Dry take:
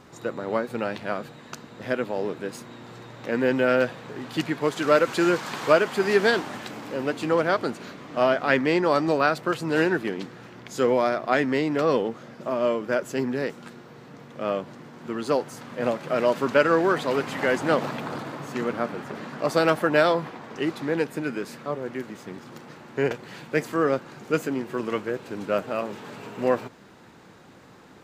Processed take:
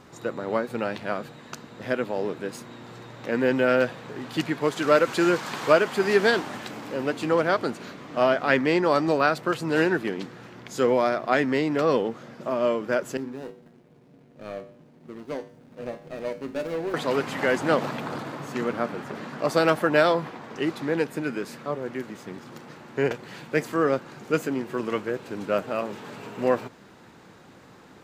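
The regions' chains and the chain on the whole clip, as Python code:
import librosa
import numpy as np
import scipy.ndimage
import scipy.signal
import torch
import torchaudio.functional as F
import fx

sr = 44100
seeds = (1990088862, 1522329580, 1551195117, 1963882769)

y = fx.chain(x, sr, fx.median_filter(points=41),
    fx.comb_fb(f0_hz=54.0, decay_s=0.47, harmonics='odd', damping=0.0, mix_pct=70), at=(13.17, 16.94))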